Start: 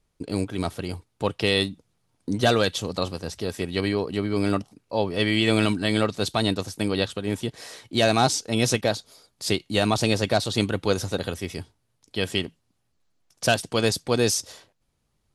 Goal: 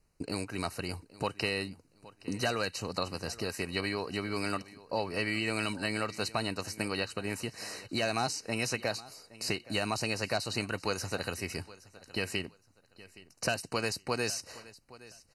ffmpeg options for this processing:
-filter_complex "[0:a]acrossover=split=820|3300[s0][s1][s2];[s0]acompressor=threshold=0.0178:ratio=4[s3];[s1]acompressor=threshold=0.0224:ratio=4[s4];[s2]acompressor=threshold=0.0126:ratio=4[s5];[s3][s4][s5]amix=inputs=3:normalize=0,asuperstop=centerf=3400:order=20:qfactor=4.3,aecho=1:1:819|1638:0.106|0.0254"

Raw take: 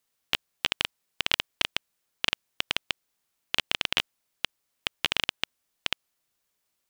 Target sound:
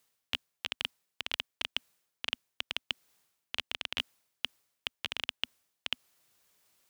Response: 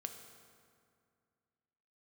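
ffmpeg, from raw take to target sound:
-af "equalizer=f=250:t=o:w=0.25:g=-3.5,areverse,acompressor=threshold=0.00794:ratio=4,areverse,highpass=53,volume=2.51"

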